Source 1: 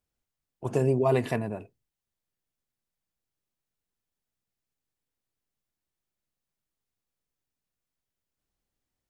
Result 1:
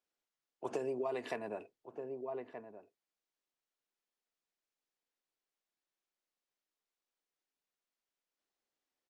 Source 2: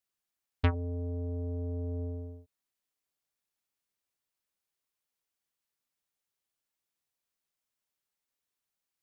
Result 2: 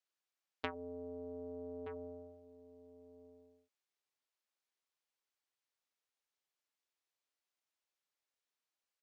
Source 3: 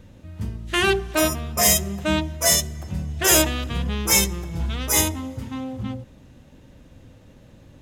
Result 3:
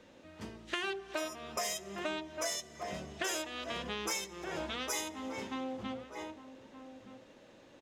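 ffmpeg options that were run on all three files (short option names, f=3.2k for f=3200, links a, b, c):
-filter_complex "[0:a]acrossover=split=280 7500:gain=0.0631 1 0.2[a][b][c];[a][b][c]amix=inputs=3:normalize=0,asplit=2[d][e];[e]adelay=1224,volume=-13dB,highshelf=f=4k:g=-27.6[f];[d][f]amix=inputs=2:normalize=0,acompressor=threshold=-32dB:ratio=8,volume=-2dB"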